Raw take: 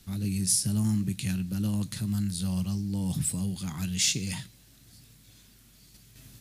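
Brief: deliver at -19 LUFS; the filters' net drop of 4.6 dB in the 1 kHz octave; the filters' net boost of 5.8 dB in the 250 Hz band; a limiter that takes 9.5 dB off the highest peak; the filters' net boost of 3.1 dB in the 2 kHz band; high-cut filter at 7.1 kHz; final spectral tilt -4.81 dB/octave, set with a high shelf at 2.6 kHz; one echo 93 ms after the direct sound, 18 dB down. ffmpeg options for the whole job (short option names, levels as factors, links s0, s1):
-af "lowpass=7100,equalizer=f=250:t=o:g=8.5,equalizer=f=1000:t=o:g=-8,equalizer=f=2000:t=o:g=3,highshelf=f=2600:g=4.5,alimiter=limit=0.106:level=0:latency=1,aecho=1:1:93:0.126,volume=2.82"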